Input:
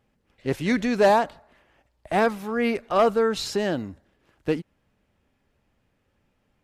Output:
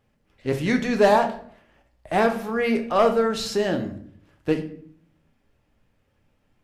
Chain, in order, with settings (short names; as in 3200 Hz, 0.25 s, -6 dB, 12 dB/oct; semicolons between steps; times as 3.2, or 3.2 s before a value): shoebox room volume 75 m³, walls mixed, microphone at 0.44 m